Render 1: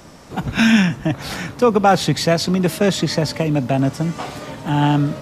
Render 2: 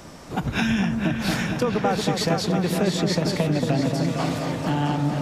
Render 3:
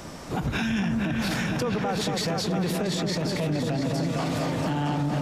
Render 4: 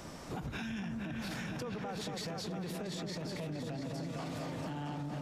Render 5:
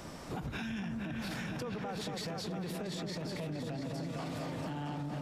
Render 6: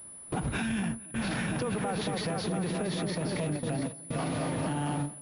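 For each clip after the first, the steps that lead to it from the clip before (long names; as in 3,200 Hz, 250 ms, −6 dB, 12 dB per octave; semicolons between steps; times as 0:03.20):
downward compressor, threshold −21 dBFS, peak gain reduction 12 dB; on a send: echo whose low-pass opens from repeat to repeat 228 ms, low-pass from 750 Hz, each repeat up 2 octaves, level −3 dB
in parallel at −9 dB: soft clipping −24 dBFS, distortion −9 dB; on the sum: brickwall limiter −19 dBFS, peak gain reduction 10 dB
downward compressor 4 to 1, threshold −30 dBFS, peak gain reduction 6.5 dB; level −7.5 dB
parametric band 6,400 Hz −2.5 dB 0.38 octaves; level +1 dB
noise gate with hold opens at −31 dBFS; switching amplifier with a slow clock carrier 10,000 Hz; level +7.5 dB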